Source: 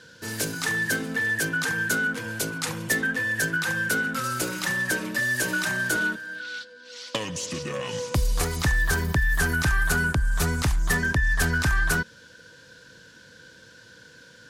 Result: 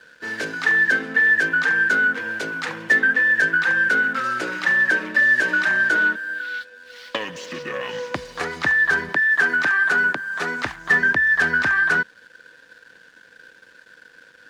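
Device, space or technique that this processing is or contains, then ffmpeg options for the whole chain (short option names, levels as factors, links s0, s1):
pocket radio on a weak battery: -filter_complex "[0:a]highpass=270,lowpass=3400,aeval=exprs='sgn(val(0))*max(abs(val(0))-0.00168,0)':c=same,equalizer=f=1700:t=o:w=0.54:g=7.5,asettb=1/sr,asplit=3[s0][s1][s2];[s0]atrim=end=9.094[s3];[s1]atrim=start=9.09:end=10.66,asetpts=PTS-STARTPTS,afade=t=in:d=0.004:c=qsin,afade=t=out:st=1.566:d=0.004:c=qsin,highpass=220[s4];[s2]atrim=start=10.656[s5];[s3][s4]acrossfade=d=0.004:c1=hsin:c2=qsin[s6];[s6][s5]acrossfade=d=0.004:c1=qsin:c2=hsin,volume=1.41"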